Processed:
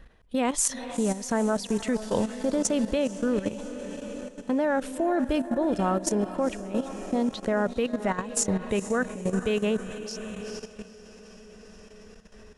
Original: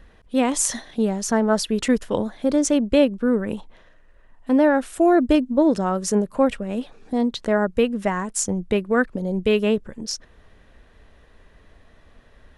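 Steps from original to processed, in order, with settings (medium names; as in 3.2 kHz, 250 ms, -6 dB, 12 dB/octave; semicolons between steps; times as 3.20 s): dynamic bell 300 Hz, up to -4 dB, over -29 dBFS, Q 2.7; echo that smears into a reverb 454 ms, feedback 63%, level -12 dB; level held to a coarse grid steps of 12 dB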